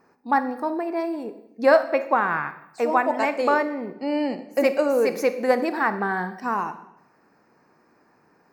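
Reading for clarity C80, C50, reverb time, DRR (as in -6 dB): 15.0 dB, 13.0 dB, 0.80 s, 11.0 dB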